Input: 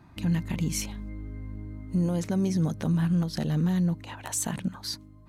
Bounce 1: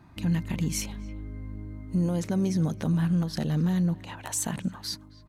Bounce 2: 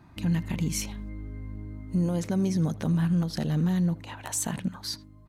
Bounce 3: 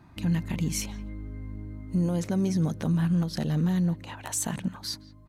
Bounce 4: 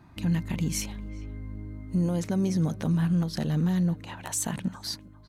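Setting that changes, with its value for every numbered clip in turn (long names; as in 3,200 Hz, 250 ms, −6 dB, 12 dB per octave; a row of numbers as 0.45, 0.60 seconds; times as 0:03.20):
far-end echo of a speakerphone, delay time: 270, 80, 170, 400 milliseconds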